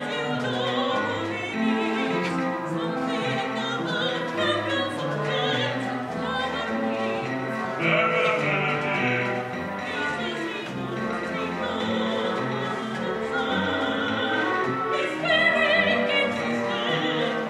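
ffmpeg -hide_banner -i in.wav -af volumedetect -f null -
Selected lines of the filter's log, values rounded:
mean_volume: -25.5 dB
max_volume: -8.3 dB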